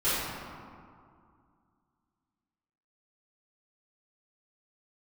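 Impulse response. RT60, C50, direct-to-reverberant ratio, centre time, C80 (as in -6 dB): 2.3 s, -3.5 dB, -14.5 dB, 141 ms, -0.5 dB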